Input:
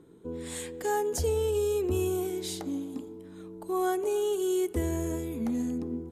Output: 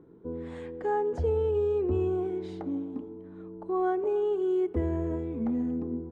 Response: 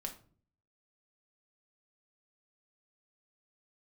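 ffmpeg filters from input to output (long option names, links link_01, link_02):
-af "lowpass=1400,volume=1dB"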